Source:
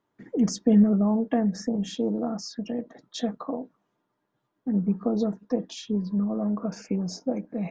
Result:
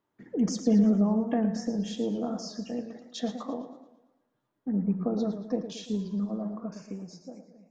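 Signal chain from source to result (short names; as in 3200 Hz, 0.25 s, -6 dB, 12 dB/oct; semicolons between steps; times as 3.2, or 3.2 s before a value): ending faded out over 1.82 s; Schroeder reverb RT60 0.84 s, combs from 29 ms, DRR 15 dB; warbling echo 0.113 s, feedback 46%, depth 128 cents, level -10 dB; gain -3.5 dB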